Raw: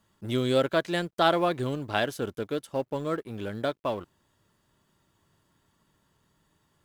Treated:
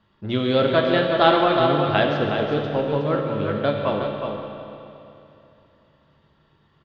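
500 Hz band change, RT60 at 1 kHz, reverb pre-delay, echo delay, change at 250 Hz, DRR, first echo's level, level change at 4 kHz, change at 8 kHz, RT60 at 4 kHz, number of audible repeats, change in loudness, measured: +8.0 dB, 2.8 s, 14 ms, 367 ms, +7.5 dB, -0.5 dB, -6.5 dB, +7.0 dB, under -10 dB, 2.7 s, 1, +7.5 dB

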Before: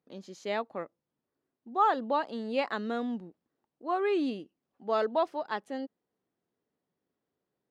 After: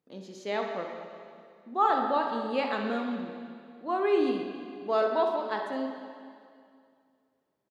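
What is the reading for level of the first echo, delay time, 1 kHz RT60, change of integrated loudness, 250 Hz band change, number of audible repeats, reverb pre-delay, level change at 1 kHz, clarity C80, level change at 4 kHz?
-10.5 dB, 64 ms, 2.3 s, +2.0 dB, +2.0 dB, 1, 8 ms, +2.0 dB, 5.0 dB, +2.0 dB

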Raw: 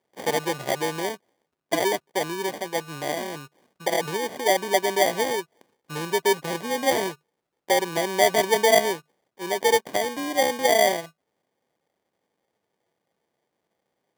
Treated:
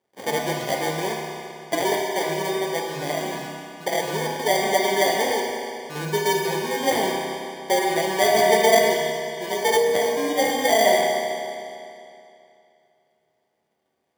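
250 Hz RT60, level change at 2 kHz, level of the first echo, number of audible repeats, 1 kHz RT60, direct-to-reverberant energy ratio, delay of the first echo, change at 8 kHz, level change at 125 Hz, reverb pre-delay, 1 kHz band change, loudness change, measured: 2.6 s, +2.0 dB, no echo, no echo, 2.6 s, -1.0 dB, no echo, +1.5 dB, +4.0 dB, 5 ms, +2.5 dB, +1.5 dB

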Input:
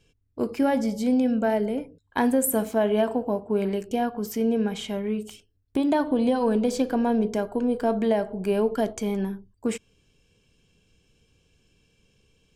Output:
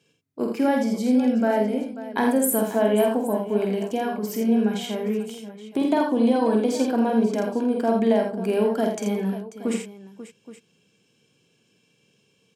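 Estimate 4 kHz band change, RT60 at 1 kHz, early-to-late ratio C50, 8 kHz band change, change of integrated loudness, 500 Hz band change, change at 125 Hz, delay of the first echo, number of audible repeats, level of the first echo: +2.5 dB, no reverb, no reverb, +2.0 dB, +2.0 dB, +2.0 dB, no reading, 48 ms, 4, -5.0 dB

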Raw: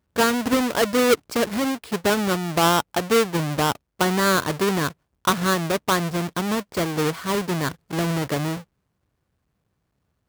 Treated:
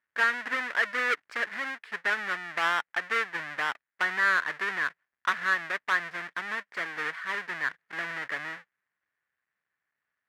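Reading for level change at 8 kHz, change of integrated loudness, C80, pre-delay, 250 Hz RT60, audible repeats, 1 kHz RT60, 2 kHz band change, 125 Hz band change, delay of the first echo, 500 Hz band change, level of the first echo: -20.0 dB, -7.0 dB, no reverb, no reverb, no reverb, no echo, no reverb, +2.0 dB, -28.5 dB, no echo, -18.5 dB, no echo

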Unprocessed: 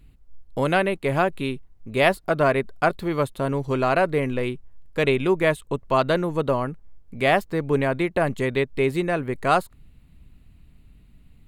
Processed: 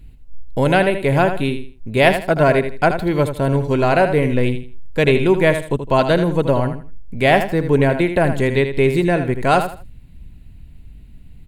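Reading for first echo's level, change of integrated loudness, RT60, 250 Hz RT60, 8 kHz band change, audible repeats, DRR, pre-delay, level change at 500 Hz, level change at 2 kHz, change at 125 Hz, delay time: -9.0 dB, +6.0 dB, no reverb, no reverb, no reading, 3, no reverb, no reverb, +6.0 dB, +5.0 dB, +9.0 dB, 80 ms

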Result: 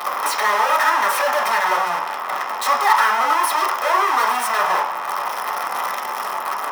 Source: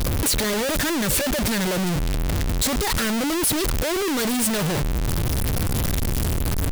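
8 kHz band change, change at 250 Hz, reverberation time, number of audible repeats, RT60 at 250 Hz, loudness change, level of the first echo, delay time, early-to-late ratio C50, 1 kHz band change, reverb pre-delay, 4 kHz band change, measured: -5.5 dB, -17.5 dB, 0.65 s, no echo, 0.45 s, +3.5 dB, no echo, no echo, 8.0 dB, +16.0 dB, 3 ms, -1.5 dB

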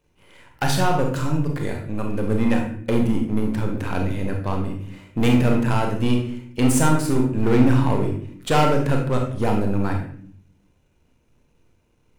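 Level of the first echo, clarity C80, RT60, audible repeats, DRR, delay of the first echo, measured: no echo, 9.0 dB, 0.55 s, no echo, 1.0 dB, no echo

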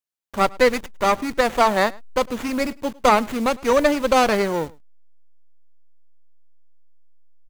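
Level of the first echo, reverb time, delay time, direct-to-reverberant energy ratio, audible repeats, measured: -24.0 dB, no reverb, 105 ms, no reverb, 1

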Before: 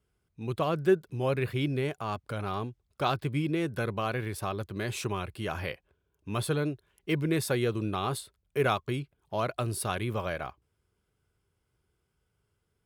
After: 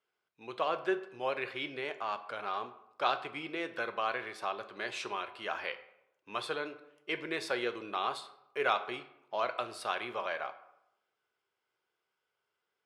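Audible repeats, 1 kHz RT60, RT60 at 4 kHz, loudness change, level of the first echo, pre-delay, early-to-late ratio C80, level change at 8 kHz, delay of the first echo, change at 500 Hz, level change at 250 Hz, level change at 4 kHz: no echo, 0.80 s, 0.50 s, -4.5 dB, no echo, 7 ms, 16.0 dB, -12.0 dB, no echo, -5.5 dB, -12.0 dB, -1.0 dB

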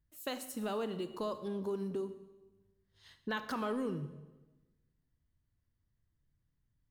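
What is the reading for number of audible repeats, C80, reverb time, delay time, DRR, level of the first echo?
no echo, 13.5 dB, 1.1 s, no echo, 10.0 dB, no echo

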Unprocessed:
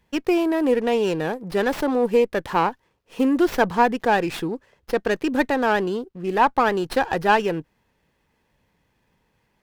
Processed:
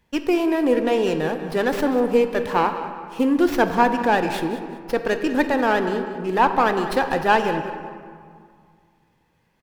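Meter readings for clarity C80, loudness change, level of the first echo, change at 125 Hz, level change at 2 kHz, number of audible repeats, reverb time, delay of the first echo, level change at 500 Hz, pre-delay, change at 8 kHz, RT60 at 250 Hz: 8.5 dB, +1.0 dB, -13.5 dB, +0.5 dB, +1.0 dB, 2, 2.1 s, 193 ms, +0.5 dB, 3 ms, +0.5 dB, 2.4 s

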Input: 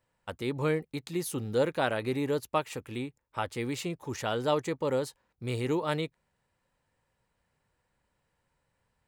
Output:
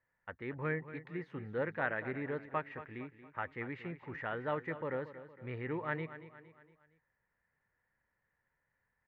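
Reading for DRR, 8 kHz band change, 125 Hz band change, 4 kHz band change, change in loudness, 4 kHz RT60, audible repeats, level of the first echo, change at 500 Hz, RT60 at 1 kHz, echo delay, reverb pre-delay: no reverb, under -35 dB, -8.0 dB, -20.0 dB, -8.0 dB, no reverb, 4, -13.5 dB, -9.5 dB, no reverb, 231 ms, no reverb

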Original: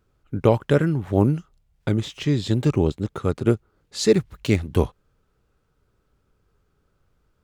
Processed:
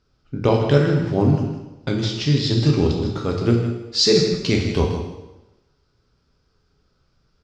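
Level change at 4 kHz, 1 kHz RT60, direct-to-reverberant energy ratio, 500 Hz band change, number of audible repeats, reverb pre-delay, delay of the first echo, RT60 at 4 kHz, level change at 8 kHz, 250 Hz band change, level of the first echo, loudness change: +11.0 dB, 0.95 s, 0.0 dB, +2.0 dB, 1, 4 ms, 159 ms, 0.90 s, +4.5 dB, +2.0 dB, -9.5 dB, +3.0 dB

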